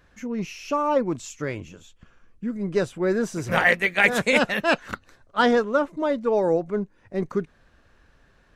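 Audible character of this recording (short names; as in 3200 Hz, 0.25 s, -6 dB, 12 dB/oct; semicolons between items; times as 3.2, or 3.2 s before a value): noise floor -59 dBFS; spectral tilt -3.5 dB/oct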